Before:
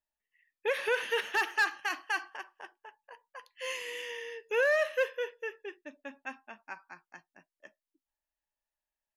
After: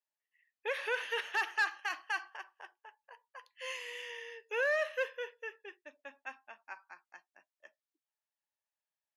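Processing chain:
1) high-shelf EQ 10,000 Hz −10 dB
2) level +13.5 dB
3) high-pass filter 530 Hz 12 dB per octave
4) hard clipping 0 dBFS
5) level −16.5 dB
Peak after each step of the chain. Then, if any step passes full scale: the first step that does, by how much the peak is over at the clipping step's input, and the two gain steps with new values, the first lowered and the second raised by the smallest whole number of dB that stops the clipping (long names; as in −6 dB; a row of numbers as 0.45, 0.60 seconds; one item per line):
−19.5, −6.0, −5.5, −5.5, −22.0 dBFS
no step passes full scale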